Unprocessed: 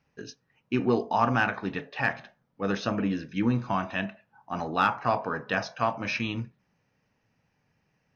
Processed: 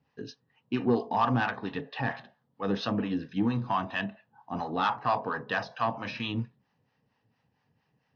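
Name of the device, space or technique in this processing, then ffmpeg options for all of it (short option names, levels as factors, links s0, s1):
guitar amplifier with harmonic tremolo: -filter_complex "[0:a]acrossover=split=630[s0][s1];[s0]aeval=exprs='val(0)*(1-0.7/2+0.7/2*cos(2*PI*4.4*n/s))':c=same[s2];[s1]aeval=exprs='val(0)*(1-0.7/2-0.7/2*cos(2*PI*4.4*n/s))':c=same[s3];[s2][s3]amix=inputs=2:normalize=0,asoftclip=type=tanh:threshold=0.112,highpass=95,equalizer=f=180:t=q:w=4:g=-5,equalizer=f=350:t=q:w=4:g=-5,equalizer=f=600:t=q:w=4:g=-6,equalizer=f=1400:t=q:w=4:g=-7,equalizer=f=2300:t=q:w=4:g=-10,lowpass=f=4500:w=0.5412,lowpass=f=4500:w=1.3066,volume=1.88"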